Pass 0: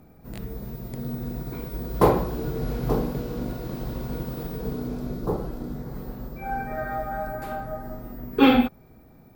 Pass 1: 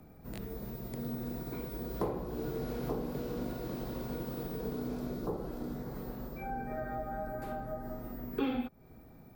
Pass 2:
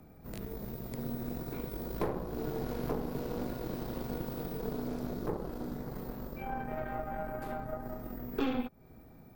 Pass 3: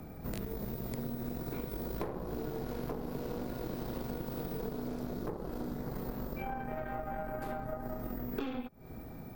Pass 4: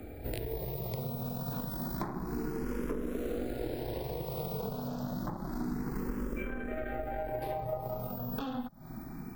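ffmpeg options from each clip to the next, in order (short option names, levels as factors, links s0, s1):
-filter_complex "[0:a]acrossover=split=210|580[s0][s1][s2];[s0]acompressor=threshold=0.01:ratio=4[s3];[s1]acompressor=threshold=0.0224:ratio=4[s4];[s2]acompressor=threshold=0.00794:ratio=4[s5];[s3][s4][s5]amix=inputs=3:normalize=0,volume=0.708"
-af "aeval=exprs='0.0944*(cos(1*acos(clip(val(0)/0.0944,-1,1)))-cos(1*PI/2))+0.0119*(cos(6*acos(clip(val(0)/0.0944,-1,1)))-cos(6*PI/2))':c=same"
-af "acompressor=threshold=0.00708:ratio=6,volume=2.66"
-filter_complex "[0:a]asplit=2[s0][s1];[s1]afreqshift=0.29[s2];[s0][s2]amix=inputs=2:normalize=1,volume=1.88"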